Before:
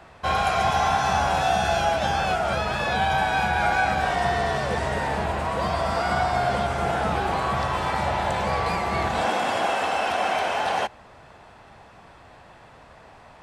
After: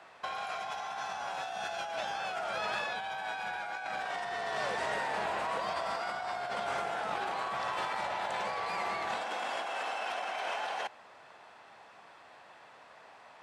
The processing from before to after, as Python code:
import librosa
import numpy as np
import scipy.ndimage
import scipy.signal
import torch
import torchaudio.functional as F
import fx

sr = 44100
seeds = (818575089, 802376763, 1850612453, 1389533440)

y = fx.weighting(x, sr, curve='A')
y = fx.over_compress(y, sr, threshold_db=-28.0, ratio=-1.0)
y = F.gain(torch.from_numpy(y), -8.0).numpy()